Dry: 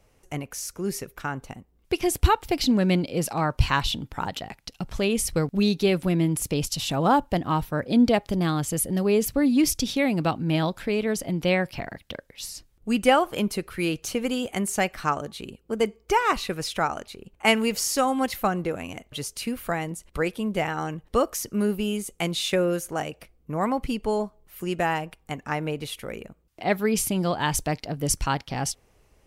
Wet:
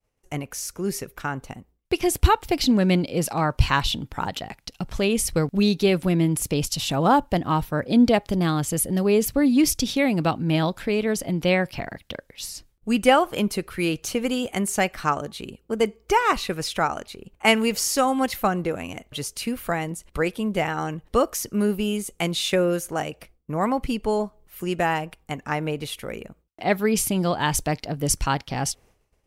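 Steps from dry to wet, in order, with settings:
downward expander −50 dBFS
level +2 dB

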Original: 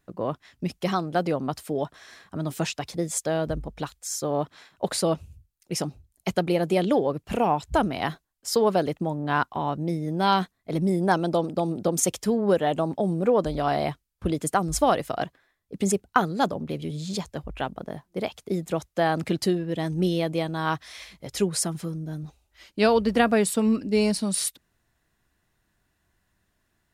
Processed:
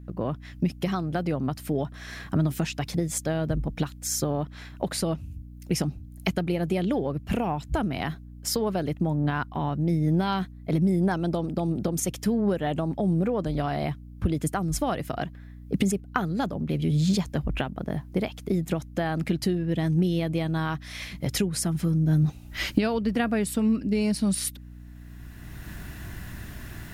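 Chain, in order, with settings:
camcorder AGC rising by 21 dB per second
octave-band graphic EQ 125/500/1,000/4,000/8,000 Hz +4/−5/−5/−4/−6 dB
in parallel at +3 dB: downward compressor, threshold −31 dBFS, peak gain reduction 18 dB
on the sum: mains hum 60 Hz, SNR 16 dB
level −5.5 dB

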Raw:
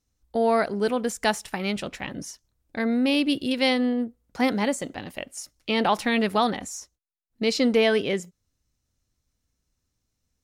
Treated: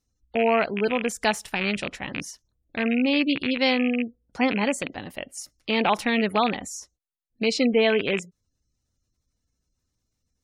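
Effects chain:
loose part that buzzes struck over −35 dBFS, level −15 dBFS
gate on every frequency bin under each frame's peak −30 dB strong

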